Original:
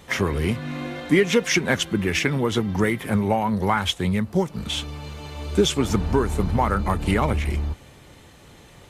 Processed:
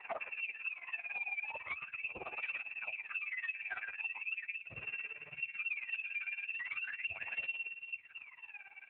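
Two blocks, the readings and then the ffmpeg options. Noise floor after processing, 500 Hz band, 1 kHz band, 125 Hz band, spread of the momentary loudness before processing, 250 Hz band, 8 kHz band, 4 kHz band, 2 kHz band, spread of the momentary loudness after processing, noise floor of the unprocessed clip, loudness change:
−58 dBFS, −31.0 dB, −24.5 dB, below −40 dB, 9 LU, below −40 dB, below −40 dB, −24.5 dB, −9.0 dB, 6 LU, −48 dBFS, −17.0 dB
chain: -filter_complex "[0:a]asplit=2[link_01][link_02];[link_02]adelay=123,lowpass=frequency=1200:poles=1,volume=-3.5dB,asplit=2[link_03][link_04];[link_04]adelay=123,lowpass=frequency=1200:poles=1,volume=0.34,asplit=2[link_05][link_06];[link_06]adelay=123,lowpass=frequency=1200:poles=1,volume=0.34,asplit=2[link_07][link_08];[link_08]adelay=123,lowpass=frequency=1200:poles=1,volume=0.34[link_09];[link_03][link_05][link_07][link_09]amix=inputs=4:normalize=0[link_10];[link_01][link_10]amix=inputs=2:normalize=0,lowpass=frequency=2400:width_type=q:width=0.5098,lowpass=frequency=2400:width_type=q:width=0.6013,lowpass=frequency=2400:width_type=q:width=0.9,lowpass=frequency=2400:width_type=q:width=2.563,afreqshift=-2800,lowshelf=frequency=370:gain=-7.5,bandreject=frequency=60:width_type=h:width=6,bandreject=frequency=120:width_type=h:width=6,bandreject=frequency=180:width_type=h:width=6,bandreject=frequency=240:width_type=h:width=6,bandreject=frequency=300:width_type=h:width=6,aphaser=in_gain=1:out_gain=1:delay=1.3:decay=0.79:speed=0.4:type=sinusoidal,volume=15dB,asoftclip=hard,volume=-15dB,tremolo=f=18:d=0.82,asubboost=boost=8:cutoff=91,acompressor=threshold=-34dB:ratio=5,flanger=delay=1:depth=1.7:regen=34:speed=1.1:shape=triangular,volume=-1.5dB" -ar 8000 -c:a libopencore_amrnb -b:a 12200

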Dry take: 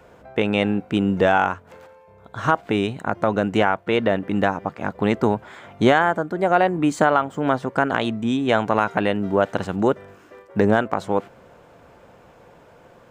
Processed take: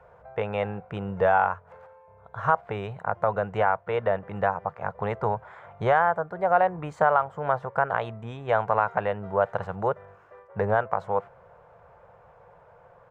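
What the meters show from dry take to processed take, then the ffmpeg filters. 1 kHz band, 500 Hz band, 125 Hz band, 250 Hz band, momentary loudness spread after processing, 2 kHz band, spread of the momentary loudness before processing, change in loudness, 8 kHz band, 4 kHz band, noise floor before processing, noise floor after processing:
−2.0 dB, −4.5 dB, −6.0 dB, −16.5 dB, 11 LU, −6.0 dB, 8 LU, −5.0 dB, below −20 dB, below −15 dB, −50 dBFS, −55 dBFS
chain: -af "firequalizer=gain_entry='entry(110,0);entry(170,-4);entry(260,-22);entry(470,0);entry(950,3);entry(3000,-12);entry(4300,-15);entry(9000,-19)':delay=0.05:min_phase=1,volume=-4dB"

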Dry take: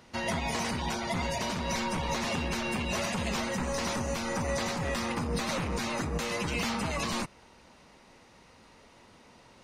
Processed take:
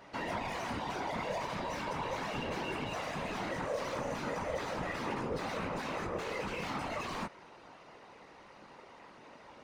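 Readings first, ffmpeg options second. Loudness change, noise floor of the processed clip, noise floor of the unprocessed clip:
−5.5 dB, −56 dBFS, −57 dBFS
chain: -filter_complex "[0:a]flanger=delay=16.5:depth=7.1:speed=0.39,asplit=2[link_01][link_02];[link_02]highpass=frequency=720:poles=1,volume=24dB,asoftclip=type=tanh:threshold=-20.5dB[link_03];[link_01][link_03]amix=inputs=2:normalize=0,lowpass=frequency=1000:poles=1,volume=-6dB,afftfilt=real='hypot(re,im)*cos(2*PI*random(0))':imag='hypot(re,im)*sin(2*PI*random(1))':win_size=512:overlap=0.75"

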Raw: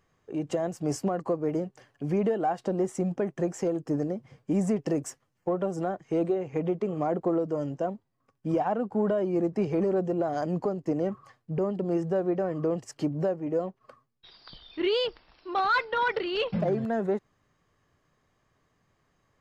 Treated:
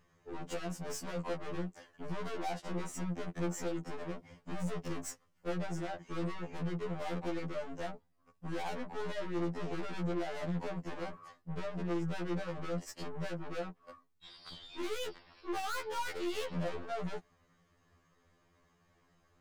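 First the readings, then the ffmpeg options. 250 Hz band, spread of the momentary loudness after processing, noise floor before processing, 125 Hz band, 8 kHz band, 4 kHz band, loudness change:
−11.0 dB, 9 LU, −74 dBFS, −7.0 dB, −2.0 dB, −7.5 dB, −11.0 dB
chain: -af "aeval=exprs='(tanh(89.1*val(0)+0.4)-tanh(0.4))/89.1':channel_layout=same,afftfilt=real='re*2*eq(mod(b,4),0)':imag='im*2*eq(mod(b,4),0)':win_size=2048:overlap=0.75,volume=4dB"

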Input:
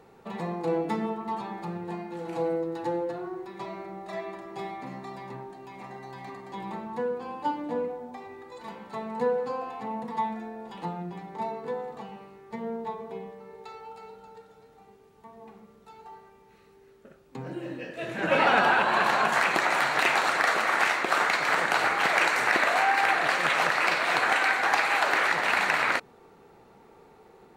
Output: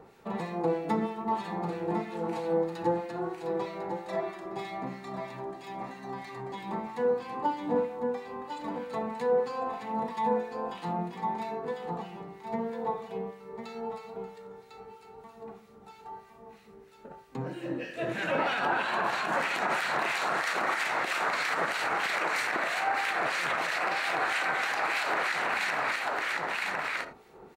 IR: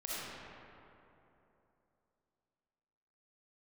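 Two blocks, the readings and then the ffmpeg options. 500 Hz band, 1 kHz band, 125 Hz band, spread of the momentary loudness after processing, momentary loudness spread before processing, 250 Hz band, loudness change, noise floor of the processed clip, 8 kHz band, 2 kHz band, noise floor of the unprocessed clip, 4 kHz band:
−0.5 dB, −3.5 dB, 0.0 dB, 14 LU, 20 LU, −0.5 dB, −5.0 dB, −54 dBFS, −4.5 dB, −5.0 dB, −56 dBFS, −4.5 dB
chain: -filter_complex "[0:a]aecho=1:1:1051:0.473,asplit=2[link_01][link_02];[1:a]atrim=start_sample=2205,atrim=end_sample=3969[link_03];[link_02][link_03]afir=irnorm=-1:irlink=0,volume=-5.5dB[link_04];[link_01][link_04]amix=inputs=2:normalize=0,alimiter=limit=-18dB:level=0:latency=1:release=111,acrossover=split=1600[link_05][link_06];[link_05]aeval=exprs='val(0)*(1-0.7/2+0.7/2*cos(2*PI*3.1*n/s))':channel_layout=same[link_07];[link_06]aeval=exprs='val(0)*(1-0.7/2-0.7/2*cos(2*PI*3.1*n/s))':channel_layout=same[link_08];[link_07][link_08]amix=inputs=2:normalize=0,volume=1.5dB"

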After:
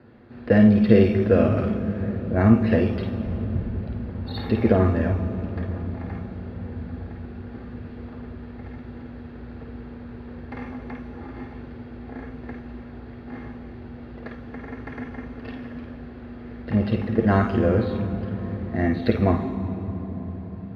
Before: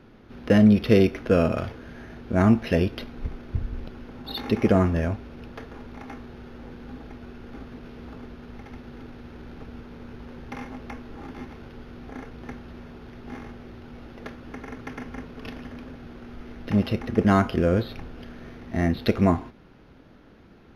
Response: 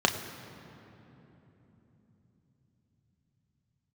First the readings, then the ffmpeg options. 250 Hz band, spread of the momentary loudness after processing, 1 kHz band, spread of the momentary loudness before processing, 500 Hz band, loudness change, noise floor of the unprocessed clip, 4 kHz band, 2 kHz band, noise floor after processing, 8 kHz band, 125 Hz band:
+2.0 dB, 20 LU, 0.0 dB, 22 LU, +2.0 dB, 0.0 dB, −51 dBFS, −4.5 dB, +0.5 dB, −40 dBFS, can't be measured, +3.0 dB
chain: -filter_complex "[1:a]atrim=start_sample=2205,asetrate=26901,aresample=44100[link_01];[0:a][link_01]afir=irnorm=-1:irlink=0,volume=-17dB"

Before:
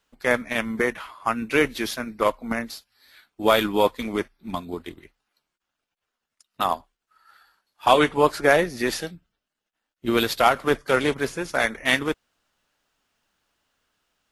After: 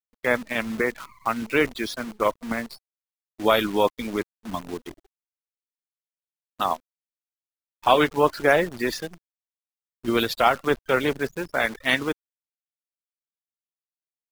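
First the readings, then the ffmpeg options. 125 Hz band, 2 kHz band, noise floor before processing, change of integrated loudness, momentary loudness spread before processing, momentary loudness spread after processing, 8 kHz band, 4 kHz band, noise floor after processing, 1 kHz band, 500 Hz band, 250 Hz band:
−1.0 dB, −1.0 dB, −85 dBFS, −1.0 dB, 13 LU, 13 LU, −4.5 dB, −1.5 dB, below −85 dBFS, −1.0 dB, −1.0 dB, −1.0 dB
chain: -af "afftfilt=real='re*gte(hypot(re,im),0.0316)':imag='im*gte(hypot(re,im),0.0316)':win_size=1024:overlap=0.75,acrusher=bits=7:dc=4:mix=0:aa=0.000001,volume=-1dB"

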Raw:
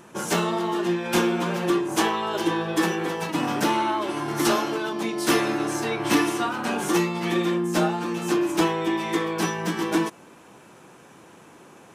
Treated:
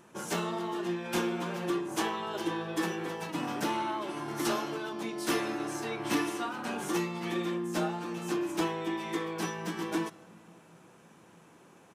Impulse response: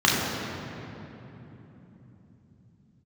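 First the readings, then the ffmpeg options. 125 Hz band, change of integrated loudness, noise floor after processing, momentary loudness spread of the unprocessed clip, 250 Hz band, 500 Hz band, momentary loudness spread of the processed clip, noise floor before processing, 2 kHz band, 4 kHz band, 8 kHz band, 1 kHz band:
−9.0 dB, −9.0 dB, −58 dBFS, 5 LU, −9.0 dB, −9.0 dB, 5 LU, −50 dBFS, −9.0 dB, −9.0 dB, −9.0 dB, −9.0 dB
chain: -filter_complex "[0:a]asplit=2[link_01][link_02];[link_02]aecho=1:1:1.5:0.65[link_03];[1:a]atrim=start_sample=2205,adelay=116[link_04];[link_03][link_04]afir=irnorm=-1:irlink=0,volume=-41dB[link_05];[link_01][link_05]amix=inputs=2:normalize=0,volume=-9dB"

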